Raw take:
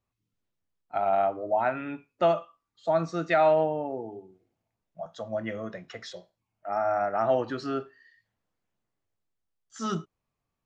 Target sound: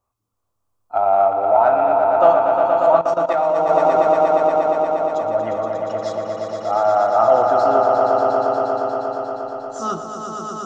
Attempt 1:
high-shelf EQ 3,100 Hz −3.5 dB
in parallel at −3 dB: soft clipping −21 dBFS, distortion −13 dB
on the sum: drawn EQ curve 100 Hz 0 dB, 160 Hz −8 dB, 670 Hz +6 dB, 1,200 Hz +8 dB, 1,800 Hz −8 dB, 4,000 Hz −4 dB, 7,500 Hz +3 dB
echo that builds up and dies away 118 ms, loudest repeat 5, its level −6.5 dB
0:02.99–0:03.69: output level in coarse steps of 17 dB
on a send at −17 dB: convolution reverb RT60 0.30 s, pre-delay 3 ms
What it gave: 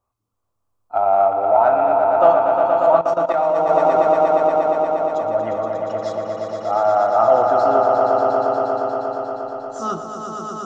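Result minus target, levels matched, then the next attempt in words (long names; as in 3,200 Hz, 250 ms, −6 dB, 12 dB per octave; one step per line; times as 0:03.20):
8,000 Hz band −2.5 dB
in parallel at −3 dB: soft clipping −21 dBFS, distortion −13 dB
on the sum: drawn EQ curve 100 Hz 0 dB, 160 Hz −8 dB, 670 Hz +6 dB, 1,200 Hz +8 dB, 1,800 Hz −8 dB, 4,000 Hz −4 dB, 7,500 Hz +3 dB
echo that builds up and dies away 118 ms, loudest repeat 5, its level −6.5 dB
0:02.99–0:03.69: output level in coarse steps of 17 dB
on a send at −17 dB: convolution reverb RT60 0.30 s, pre-delay 3 ms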